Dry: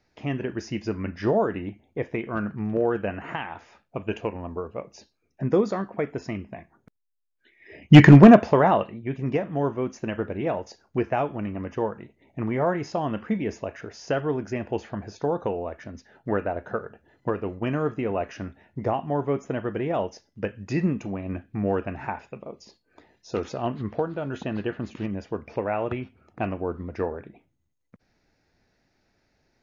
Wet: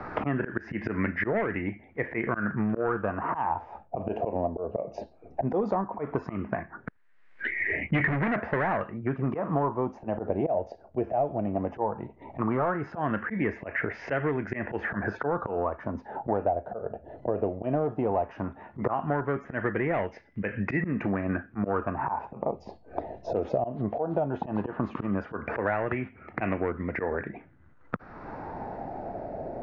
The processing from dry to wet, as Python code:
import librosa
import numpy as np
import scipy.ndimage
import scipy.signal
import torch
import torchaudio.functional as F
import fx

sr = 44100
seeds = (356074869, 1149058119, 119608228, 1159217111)

y = fx.auto_swell(x, sr, attack_ms=158.0)
y = 10.0 ** (-20.0 / 20.0) * np.tanh(y / 10.0 ** (-20.0 / 20.0))
y = fx.filter_lfo_lowpass(y, sr, shape='sine', hz=0.16, low_hz=650.0, high_hz=2100.0, q=4.4)
y = fx.band_squash(y, sr, depth_pct=100)